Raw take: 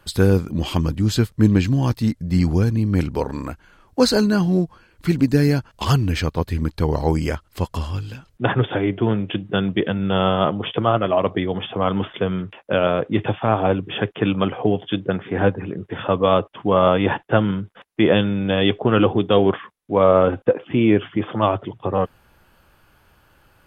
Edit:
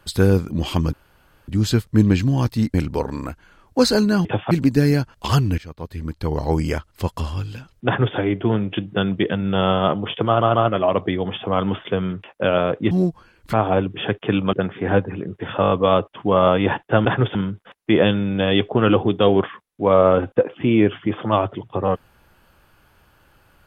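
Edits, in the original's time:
0.93 s: insert room tone 0.55 s
2.19–2.95 s: delete
4.46–5.08 s: swap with 13.20–13.46 s
6.15–7.21 s: fade in, from -20.5 dB
8.43–8.73 s: copy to 17.45 s
10.84 s: stutter 0.14 s, 3 plays
14.46–15.03 s: delete
16.11 s: stutter 0.02 s, 6 plays

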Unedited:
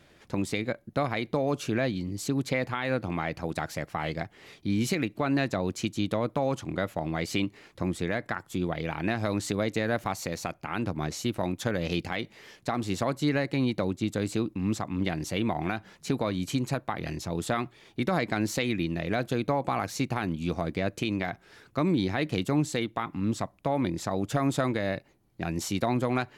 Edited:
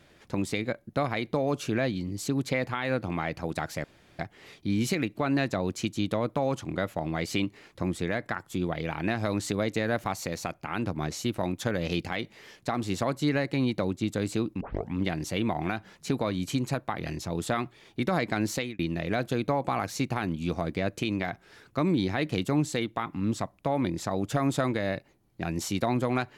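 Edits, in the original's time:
3.84–4.19 s: room tone
14.61 s: tape start 0.33 s
18.54–18.79 s: fade out

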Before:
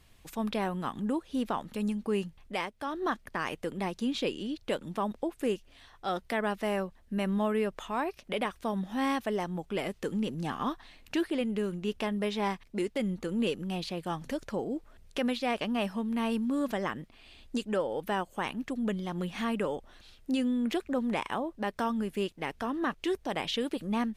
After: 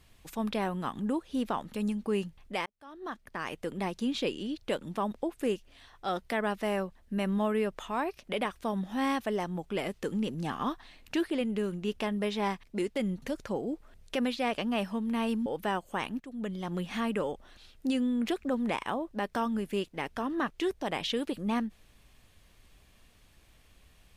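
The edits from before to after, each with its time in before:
2.66–3.76 s: fade in
13.22–14.25 s: delete
16.49–17.90 s: delete
18.64–19.12 s: fade in, from -15 dB

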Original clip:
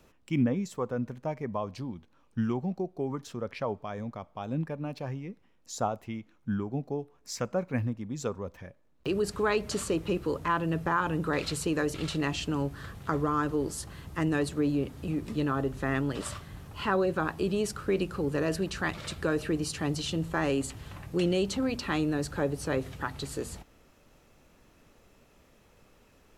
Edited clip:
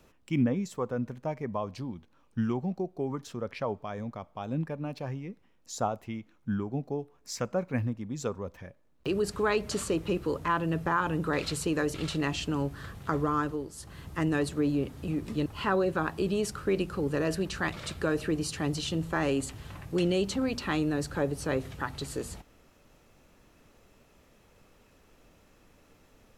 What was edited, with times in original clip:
13.38–14.02 s: dip -10 dB, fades 0.30 s
15.46–16.67 s: delete

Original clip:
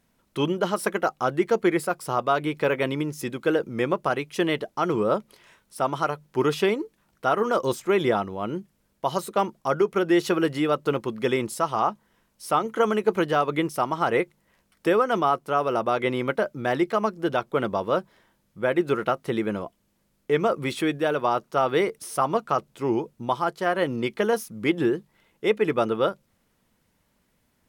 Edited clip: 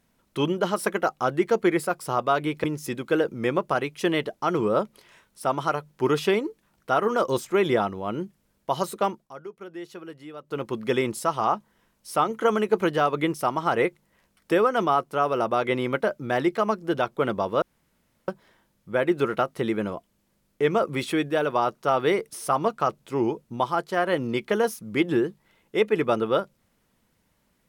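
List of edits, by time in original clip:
2.64–2.99 s: delete
9.34–11.11 s: dip -17.5 dB, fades 0.34 s
17.97 s: insert room tone 0.66 s

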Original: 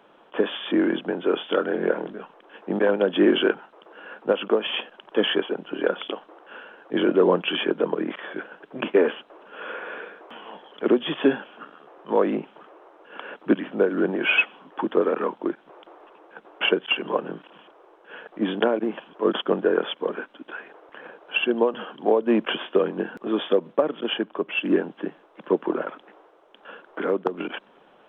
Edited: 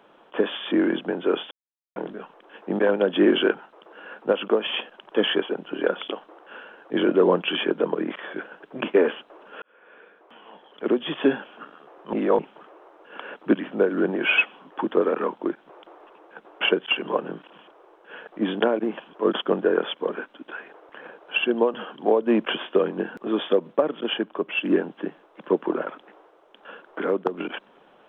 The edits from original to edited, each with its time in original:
1.51–1.96 s: mute
9.62–11.40 s: fade in
12.13–12.39 s: reverse

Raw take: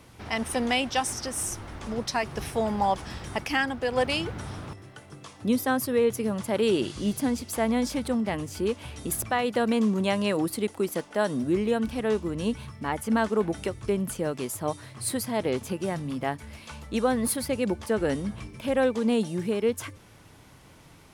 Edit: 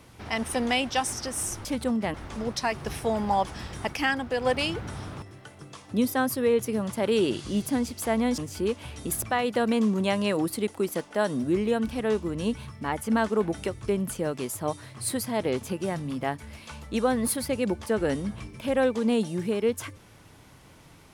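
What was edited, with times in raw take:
7.89–8.38 s: move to 1.65 s

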